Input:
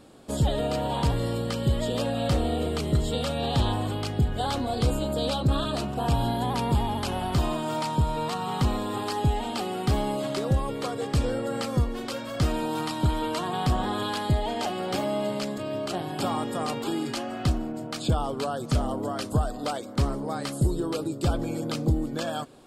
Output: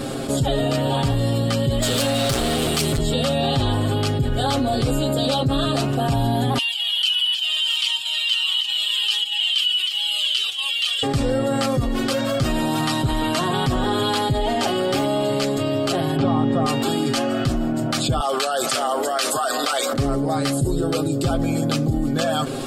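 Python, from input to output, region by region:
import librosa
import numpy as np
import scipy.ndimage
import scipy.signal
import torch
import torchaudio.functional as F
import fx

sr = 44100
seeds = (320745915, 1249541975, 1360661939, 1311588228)

y = fx.chain(x, sr, fx.overload_stage(gain_db=27.0),
    fx.high_shelf(hz=2700.0, db=12.0), at=(1.82, 2.98))
y = fx.chain(y, sr, fx.over_compress(threshold_db=-29.0, ratio=-1.0),
    fx.highpass_res(hz=3000.0, q=13.0),
    fx.comb_cascade(direction='falling', hz=1.5), at=(6.58, 11.03))
y = fx.chain(y, sr, fx.lowpass(hz=3500.0, slope=12),
    fx.low_shelf(hz=460.0, db=9.5), at=(16.16, 16.66))
y = fx.chain(y, sr, fx.highpass(hz=860.0, slope=12),
    fx.env_flatten(amount_pct=70), at=(18.2, 19.93))
y = fx.notch(y, sr, hz=970.0, q=5.2)
y = y + 0.74 * np.pad(y, (int(7.5 * sr / 1000.0), 0))[:len(y)]
y = fx.env_flatten(y, sr, amount_pct=70)
y = F.gain(torch.from_numpy(y), -2.0).numpy()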